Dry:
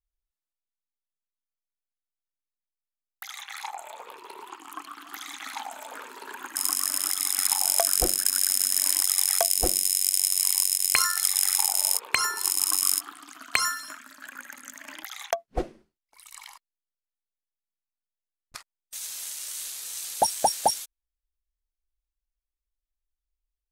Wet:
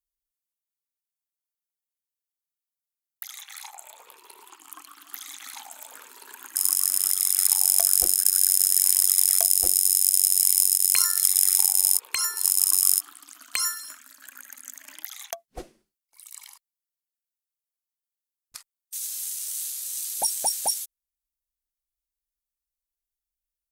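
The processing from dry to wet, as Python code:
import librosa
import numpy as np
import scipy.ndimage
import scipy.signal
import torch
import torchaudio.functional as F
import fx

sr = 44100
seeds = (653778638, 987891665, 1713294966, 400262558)

y = fx.cheby_harmonics(x, sr, harmonics=(2, 5), levels_db=(-43, -29), full_scale_db=-4.5)
y = scipy.signal.lfilter([1.0, -0.8], [1.0], y)
y = F.gain(torch.from_numpy(y), 2.0).numpy()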